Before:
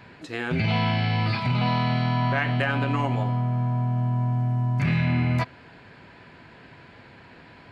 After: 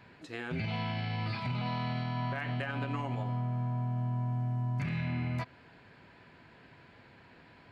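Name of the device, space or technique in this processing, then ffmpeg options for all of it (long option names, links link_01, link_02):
clipper into limiter: -af "asoftclip=type=hard:threshold=-13dB,alimiter=limit=-17.5dB:level=0:latency=1:release=93,volume=-8.5dB"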